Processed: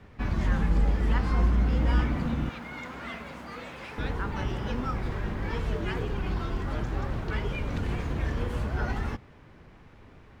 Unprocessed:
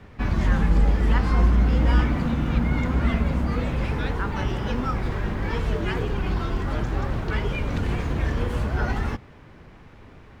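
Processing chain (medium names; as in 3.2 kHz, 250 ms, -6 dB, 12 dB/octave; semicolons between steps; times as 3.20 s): 2.49–3.98 s: high-pass 930 Hz 6 dB/octave; trim -5 dB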